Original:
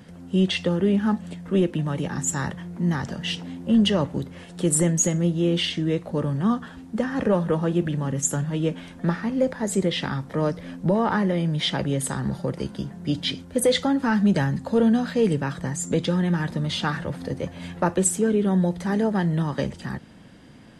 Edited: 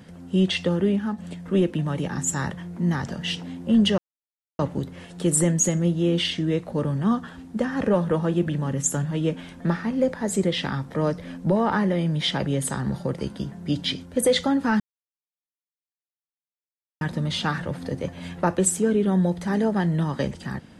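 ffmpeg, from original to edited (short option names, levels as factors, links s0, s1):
-filter_complex "[0:a]asplit=5[s0][s1][s2][s3][s4];[s0]atrim=end=1.18,asetpts=PTS-STARTPTS,afade=t=out:st=0.82:d=0.36:silence=0.375837[s5];[s1]atrim=start=1.18:end=3.98,asetpts=PTS-STARTPTS,afade=t=in:d=0.004:c=hsin:silence=0.375837,afade=t=out:st=2.796:d=0.004:c=hsin,apad=pad_dur=0.61[s6];[s2]atrim=start=3.98:end=14.19,asetpts=PTS-STARTPTS,afade=t=in:d=0.004:c=hsin,afade=t=out:st=10.206:d=0.004:c=hsin[s7];[s3]atrim=start=14.19:end=16.4,asetpts=PTS-STARTPTS,volume=0[s8];[s4]atrim=start=16.4,asetpts=PTS-STARTPTS,afade=t=in:d=0.004:c=hsin[s9];[s5][s6][s7][s8][s9]concat=n=5:v=0:a=1"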